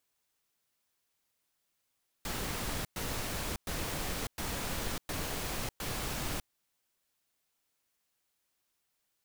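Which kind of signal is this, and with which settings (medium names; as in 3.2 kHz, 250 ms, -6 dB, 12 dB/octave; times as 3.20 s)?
noise bursts pink, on 0.60 s, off 0.11 s, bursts 6, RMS -36 dBFS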